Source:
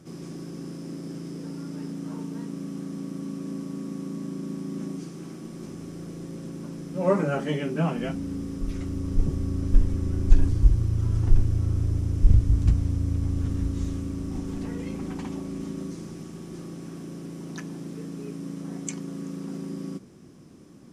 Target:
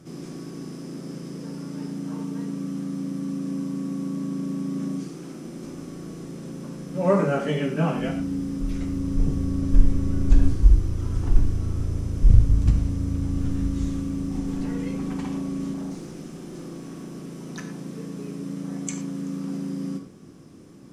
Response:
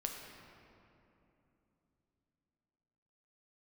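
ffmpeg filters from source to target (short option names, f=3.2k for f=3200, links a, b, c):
-filter_complex "[0:a]asettb=1/sr,asplit=3[a][b][c];[a]atrim=end=15.734[d];[b]atrim=start=15.73:end=17.14,asetpts=PTS-STARTPTS,afade=t=in:d=0.004:c=qsin,afade=t=out:st=1.406:d=0.004:c=qsin,asoftclip=type=hard:threshold=-33dB[e];[c]atrim=start=17.136[f];[d][e]acrossfade=d=0.004:c1=hsin:c2=qsin[g];[g][f]acrossfade=d=0.004:c1=qsin:c2=hsin[h];[1:a]atrim=start_sample=2205,afade=t=out:st=0.17:d=0.01,atrim=end_sample=7938[i];[h][i]afir=irnorm=-1:irlink=0,volume=3.5dB"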